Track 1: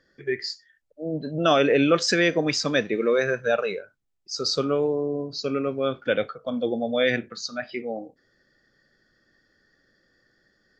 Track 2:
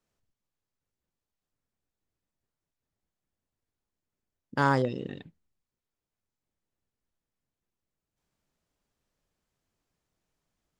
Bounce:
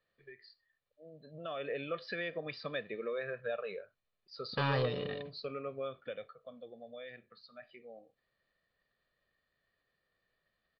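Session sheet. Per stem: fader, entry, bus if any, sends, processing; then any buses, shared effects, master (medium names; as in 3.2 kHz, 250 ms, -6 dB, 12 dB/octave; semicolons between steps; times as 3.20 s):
1.17 s -21 dB -> 1.69 s -9 dB -> 5.81 s -9 dB -> 6.53 s -19.5 dB, 0.00 s, no send, compression 4:1, threshold -27 dBFS, peak gain reduction 11.5 dB
-1.5 dB, 0.00 s, no send, formants flattened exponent 0.6; saturation -24 dBFS, distortion -8 dB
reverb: none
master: elliptic low-pass 4.3 kHz, stop band 40 dB; bass shelf 91 Hz -5.5 dB; comb 1.7 ms, depth 52%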